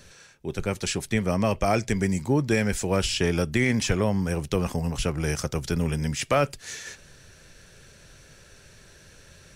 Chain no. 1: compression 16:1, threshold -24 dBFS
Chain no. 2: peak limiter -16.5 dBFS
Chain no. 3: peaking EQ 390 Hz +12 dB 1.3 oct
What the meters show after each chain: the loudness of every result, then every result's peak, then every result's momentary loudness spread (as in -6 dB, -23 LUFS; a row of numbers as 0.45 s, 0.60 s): -30.5 LUFS, -28.0 LUFS, -19.5 LUFS; -12.5 dBFS, -16.5 dBFS, -4.0 dBFS; 7 LU, 7 LU, 7 LU